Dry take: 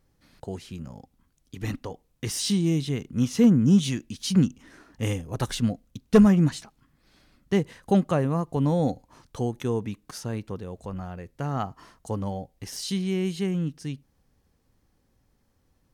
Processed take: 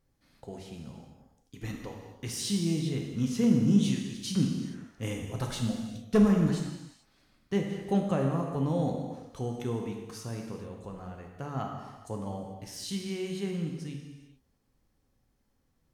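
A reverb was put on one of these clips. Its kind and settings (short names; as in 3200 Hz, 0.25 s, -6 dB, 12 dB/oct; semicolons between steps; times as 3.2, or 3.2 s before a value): non-linear reverb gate 0.47 s falling, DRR 1 dB; gain -7.5 dB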